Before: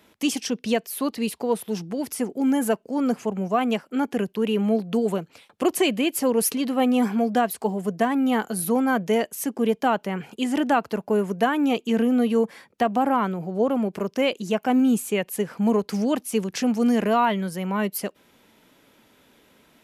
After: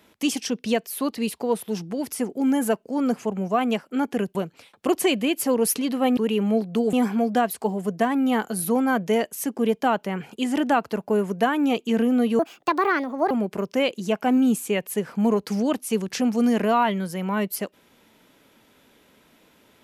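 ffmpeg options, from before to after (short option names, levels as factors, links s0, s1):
-filter_complex "[0:a]asplit=6[s0][s1][s2][s3][s4][s5];[s0]atrim=end=4.352[s6];[s1]atrim=start=5.108:end=6.932[s7];[s2]atrim=start=4.348:end=5.112[s8];[s3]atrim=start=6.928:end=12.394[s9];[s4]atrim=start=12.39:end=13.73,asetpts=PTS-STARTPTS,asetrate=64386,aresample=44100,atrim=end_sample=40475,asetpts=PTS-STARTPTS[s10];[s5]atrim=start=13.726[s11];[s6][s7]acrossfade=d=0.004:c1=hsin:c2=hsin[s12];[s12][s8]acrossfade=d=0.004:c1=hsin:c2=hsin[s13];[s13][s9]acrossfade=d=0.004:c1=hsin:c2=hsin[s14];[s14][s10]acrossfade=d=0.004:c1=hsin:c2=hsin[s15];[s15][s11]acrossfade=d=0.004:c1=hsin:c2=hsin"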